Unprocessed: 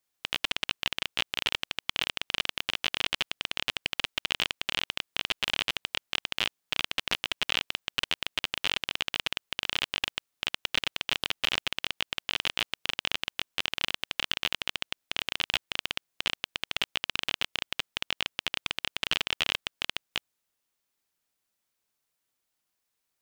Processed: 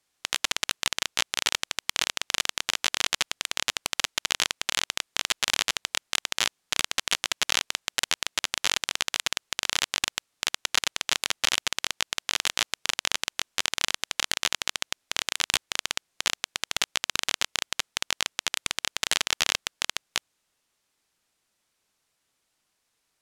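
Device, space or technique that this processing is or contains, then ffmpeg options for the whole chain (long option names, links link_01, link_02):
overflowing digital effects unit: -af "aeval=exprs='(mod(6.31*val(0)+1,2)-1)/6.31':channel_layout=same,lowpass=9900,volume=8.5dB"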